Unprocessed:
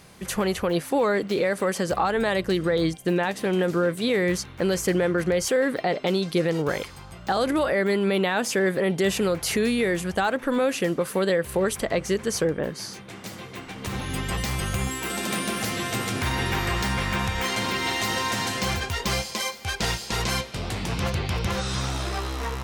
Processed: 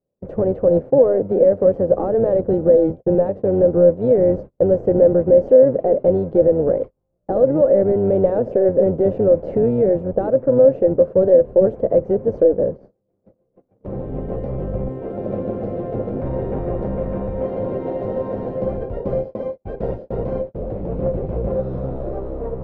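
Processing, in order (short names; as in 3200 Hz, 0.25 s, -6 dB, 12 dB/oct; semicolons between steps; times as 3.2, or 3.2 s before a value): octaver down 1 oct, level -2 dB; gate -32 dBFS, range -34 dB; in parallel at -7 dB: sample-and-hold 39×; on the sum: synth low-pass 540 Hz, resonance Q 4.9; bell 77 Hz -8.5 dB 0.57 oct; gain -1.5 dB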